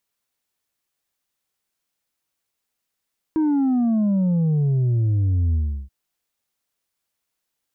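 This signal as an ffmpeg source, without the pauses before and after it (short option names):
-f lavfi -i "aevalsrc='0.141*clip((2.53-t)/0.35,0,1)*tanh(1.5*sin(2*PI*320*2.53/log(65/320)*(exp(log(65/320)*t/2.53)-1)))/tanh(1.5)':d=2.53:s=44100"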